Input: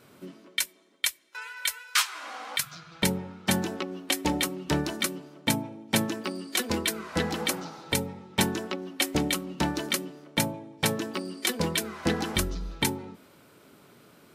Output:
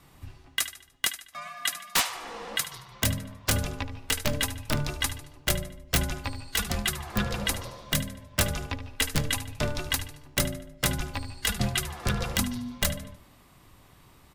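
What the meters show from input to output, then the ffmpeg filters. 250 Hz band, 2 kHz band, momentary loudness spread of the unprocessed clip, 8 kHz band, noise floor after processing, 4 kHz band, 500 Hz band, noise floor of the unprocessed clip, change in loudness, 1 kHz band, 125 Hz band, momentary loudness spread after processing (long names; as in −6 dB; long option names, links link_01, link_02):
−4.5 dB, 0.0 dB, 7 LU, +1.0 dB, −56 dBFS, 0.0 dB, −3.5 dB, −57 dBFS, −0.5 dB, −2.0 dB, +3.5 dB, 8 LU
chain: -af "aecho=1:1:74|148|222|296:0.224|0.0895|0.0358|0.0143,aeval=exprs='(mod(4.73*val(0)+1,2)-1)/4.73':channel_layout=same,afreqshift=-290"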